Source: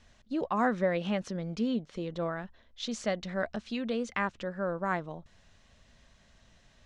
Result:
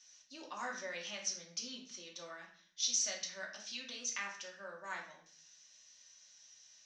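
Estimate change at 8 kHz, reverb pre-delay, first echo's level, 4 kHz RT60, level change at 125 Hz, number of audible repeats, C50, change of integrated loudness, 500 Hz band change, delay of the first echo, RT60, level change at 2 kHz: +13.0 dB, 3 ms, no echo, 0.45 s, under -25 dB, no echo, 6.0 dB, -7.0 dB, -17.5 dB, no echo, 0.50 s, -6.5 dB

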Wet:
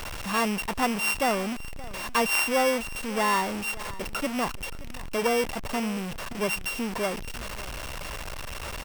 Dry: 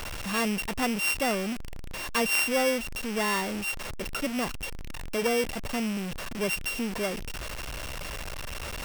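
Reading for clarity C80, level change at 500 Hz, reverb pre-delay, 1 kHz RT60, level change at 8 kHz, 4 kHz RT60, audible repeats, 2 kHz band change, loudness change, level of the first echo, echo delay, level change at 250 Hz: no reverb, +1.5 dB, no reverb, no reverb, 0.0 dB, no reverb, 1, +1.0 dB, +1.5 dB, -18.5 dB, 573 ms, +0.5 dB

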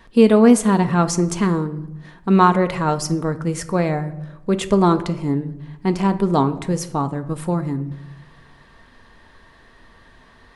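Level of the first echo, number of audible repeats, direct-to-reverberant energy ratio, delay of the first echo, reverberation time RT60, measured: no echo, no echo, 8.0 dB, no echo, 0.90 s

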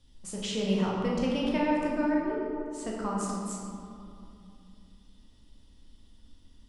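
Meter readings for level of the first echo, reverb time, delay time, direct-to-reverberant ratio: no echo, 2.7 s, no echo, -4.0 dB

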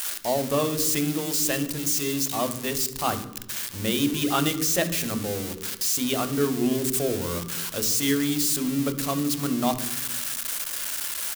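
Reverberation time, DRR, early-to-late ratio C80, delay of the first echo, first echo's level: 1.1 s, 9.0 dB, 15.0 dB, 69 ms, -18.0 dB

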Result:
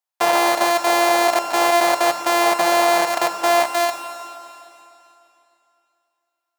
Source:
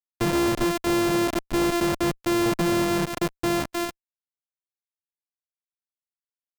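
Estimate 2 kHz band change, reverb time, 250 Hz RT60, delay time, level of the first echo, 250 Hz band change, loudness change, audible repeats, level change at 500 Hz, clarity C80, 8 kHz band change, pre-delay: +9.5 dB, 2.9 s, 2.9 s, no echo, no echo, -4.5 dB, +7.0 dB, no echo, +7.5 dB, 8.5 dB, +8.0 dB, 21 ms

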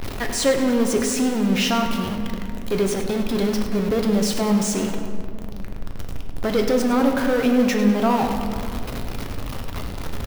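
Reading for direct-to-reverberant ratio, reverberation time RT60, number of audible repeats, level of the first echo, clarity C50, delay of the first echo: 3.0 dB, 2.7 s, 2, -11.5 dB, 5.0 dB, 101 ms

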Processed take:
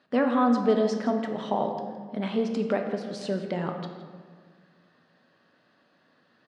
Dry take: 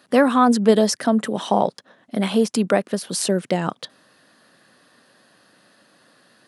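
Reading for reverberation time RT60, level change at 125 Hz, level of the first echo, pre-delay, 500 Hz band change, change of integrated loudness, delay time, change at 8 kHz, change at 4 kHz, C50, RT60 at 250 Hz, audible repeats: 1.7 s, -7.5 dB, -14.5 dB, 4 ms, -6.5 dB, -7.5 dB, 166 ms, -22.5 dB, -13.0 dB, 6.0 dB, 2.1 s, 1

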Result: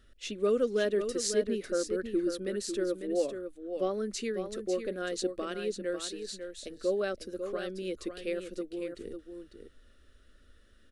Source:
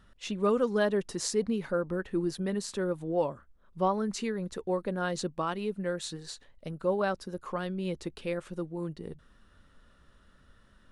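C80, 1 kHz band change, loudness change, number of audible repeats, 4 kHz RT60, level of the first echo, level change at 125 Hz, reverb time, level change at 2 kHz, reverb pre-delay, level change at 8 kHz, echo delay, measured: no reverb, -9.5 dB, -1.5 dB, 1, no reverb, -8.0 dB, -10.5 dB, no reverb, -2.5 dB, no reverb, +1.5 dB, 548 ms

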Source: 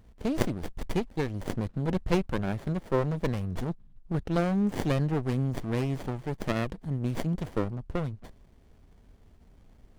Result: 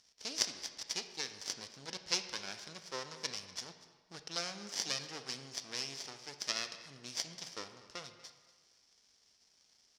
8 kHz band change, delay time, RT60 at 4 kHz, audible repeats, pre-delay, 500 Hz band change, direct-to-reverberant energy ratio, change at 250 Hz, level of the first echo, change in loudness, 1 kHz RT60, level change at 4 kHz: +10.5 dB, 241 ms, 1.0 s, 1, 17 ms, -18.0 dB, 8.0 dB, -24.0 dB, -19.5 dB, -9.0 dB, 1.6 s, +8.0 dB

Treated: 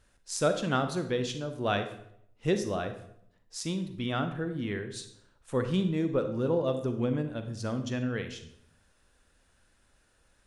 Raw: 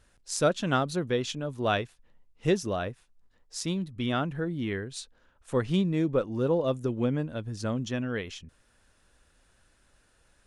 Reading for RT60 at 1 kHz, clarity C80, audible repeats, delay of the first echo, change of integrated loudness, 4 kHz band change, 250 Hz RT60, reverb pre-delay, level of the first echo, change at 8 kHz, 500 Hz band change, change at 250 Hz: 0.65 s, 13.0 dB, no echo, no echo, -1.5 dB, -2.0 dB, 0.80 s, 35 ms, no echo, -2.0 dB, -1.5 dB, -1.5 dB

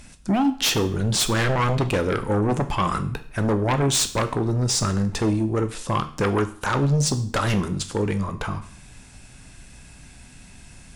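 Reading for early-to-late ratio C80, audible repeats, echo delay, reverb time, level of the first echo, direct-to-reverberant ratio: 17.5 dB, no echo, no echo, 0.55 s, no echo, 8.5 dB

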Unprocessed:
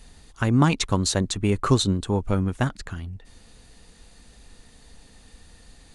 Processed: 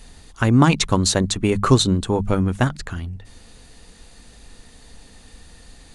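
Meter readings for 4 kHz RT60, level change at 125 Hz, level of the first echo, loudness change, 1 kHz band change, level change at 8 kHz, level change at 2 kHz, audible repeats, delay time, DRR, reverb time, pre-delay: no reverb, +4.0 dB, no echo, +4.5 dB, +5.0 dB, +5.0 dB, +5.0 dB, no echo, no echo, no reverb, no reverb, no reverb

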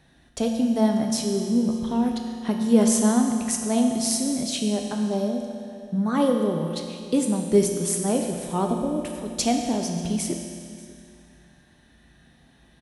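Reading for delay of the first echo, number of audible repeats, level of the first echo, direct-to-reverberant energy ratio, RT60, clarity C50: 589 ms, 1, -21.5 dB, 2.0 dB, 2.3 s, 3.5 dB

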